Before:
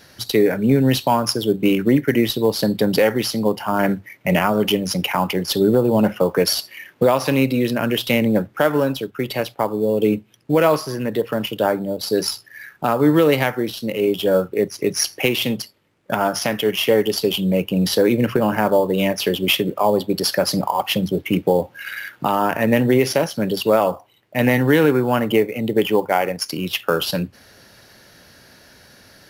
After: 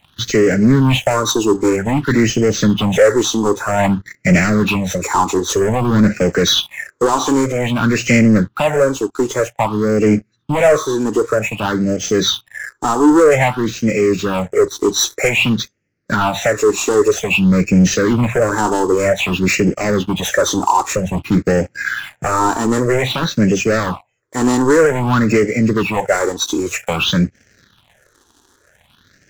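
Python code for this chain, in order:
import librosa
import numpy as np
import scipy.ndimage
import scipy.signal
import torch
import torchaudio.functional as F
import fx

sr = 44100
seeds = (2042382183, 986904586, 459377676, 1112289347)

y = fx.freq_compress(x, sr, knee_hz=1900.0, ratio=1.5)
y = fx.leveller(y, sr, passes=3)
y = fx.phaser_stages(y, sr, stages=6, low_hz=150.0, high_hz=1000.0, hz=0.52, feedback_pct=25)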